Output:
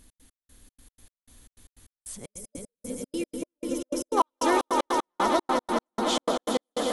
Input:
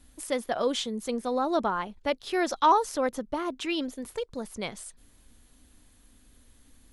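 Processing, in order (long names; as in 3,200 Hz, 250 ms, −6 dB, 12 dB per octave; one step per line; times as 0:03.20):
played backwards from end to start
high-shelf EQ 5,000 Hz +5 dB
echo that builds up and dies away 104 ms, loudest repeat 5, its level −8 dB
gate pattern "x.x..xx." 153 BPM −60 dB
gain on a spectral selection 0:02.18–0:04.17, 600–5,000 Hz −12 dB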